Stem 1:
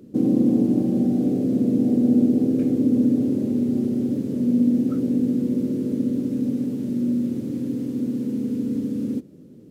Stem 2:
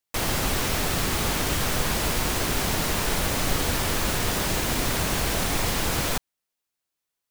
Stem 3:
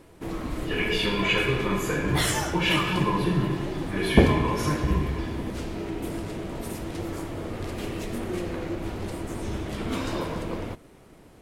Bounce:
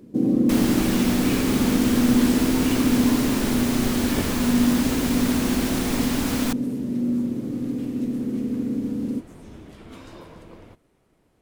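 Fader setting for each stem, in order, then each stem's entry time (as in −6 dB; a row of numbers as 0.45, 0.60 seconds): −1.0, −3.0, −13.0 decibels; 0.00, 0.35, 0.00 seconds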